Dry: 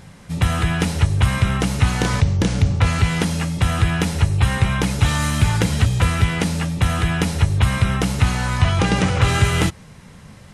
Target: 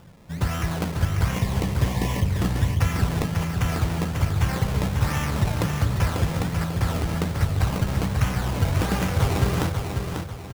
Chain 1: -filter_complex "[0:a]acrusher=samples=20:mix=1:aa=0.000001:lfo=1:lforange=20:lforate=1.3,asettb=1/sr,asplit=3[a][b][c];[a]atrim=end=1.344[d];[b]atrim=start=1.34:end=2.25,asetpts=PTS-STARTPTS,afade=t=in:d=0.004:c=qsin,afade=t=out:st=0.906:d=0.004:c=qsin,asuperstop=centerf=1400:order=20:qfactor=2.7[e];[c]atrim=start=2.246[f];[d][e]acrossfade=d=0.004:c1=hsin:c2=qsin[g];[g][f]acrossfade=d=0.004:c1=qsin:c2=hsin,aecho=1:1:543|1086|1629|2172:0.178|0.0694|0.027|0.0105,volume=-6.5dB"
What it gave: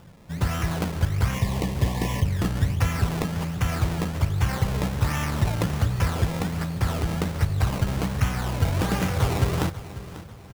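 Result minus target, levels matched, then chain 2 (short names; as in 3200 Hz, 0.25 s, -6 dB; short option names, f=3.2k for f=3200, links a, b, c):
echo-to-direct -9.5 dB
-filter_complex "[0:a]acrusher=samples=20:mix=1:aa=0.000001:lfo=1:lforange=20:lforate=1.3,asettb=1/sr,asplit=3[a][b][c];[a]atrim=end=1.344[d];[b]atrim=start=1.34:end=2.25,asetpts=PTS-STARTPTS,afade=t=in:d=0.004:c=qsin,afade=t=out:st=0.906:d=0.004:c=qsin,asuperstop=centerf=1400:order=20:qfactor=2.7[e];[c]atrim=start=2.246[f];[d][e]acrossfade=d=0.004:c1=hsin:c2=qsin[g];[g][f]acrossfade=d=0.004:c1=qsin:c2=hsin,aecho=1:1:543|1086|1629|2172|2715:0.531|0.207|0.0807|0.0315|0.0123,volume=-6.5dB"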